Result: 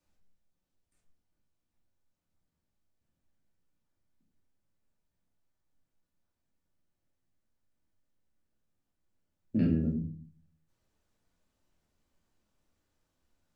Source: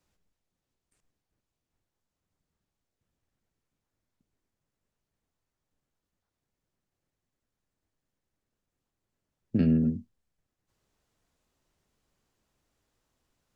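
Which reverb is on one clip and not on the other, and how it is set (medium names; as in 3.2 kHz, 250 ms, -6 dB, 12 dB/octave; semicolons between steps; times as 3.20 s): simulated room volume 370 m³, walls furnished, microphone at 2.5 m; trim -7 dB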